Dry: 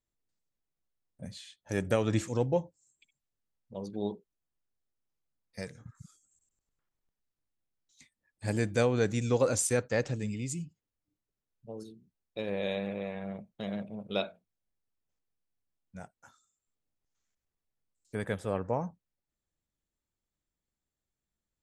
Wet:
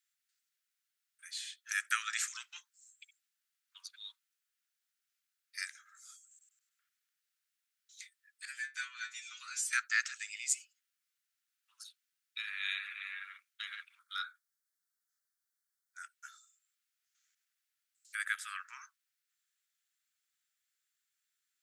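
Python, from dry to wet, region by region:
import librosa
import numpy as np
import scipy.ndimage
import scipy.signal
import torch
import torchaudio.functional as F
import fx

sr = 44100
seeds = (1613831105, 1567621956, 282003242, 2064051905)

y = fx.chain(x, sr, fx.high_shelf(hz=8300.0, db=-8.5),
    fx.stiff_resonator(f0_hz=82.0, decay_s=0.4, stiffness=0.002), at=(8.45, 9.73))
y = fx.chain(y, sr, fx.fixed_phaser(hz=710.0, stages=6),
    fx.doubler(ms=16.0, db=-11), at=(13.99, 16.03))
y = scipy.signal.sosfilt(scipy.signal.butter(12, 1300.0, 'highpass', fs=sr, output='sos'), y)
y = fx.dynamic_eq(y, sr, hz=3200.0, q=1.2, threshold_db=-52.0, ratio=4.0, max_db=-5)
y = y * 10.0 ** (8.5 / 20.0)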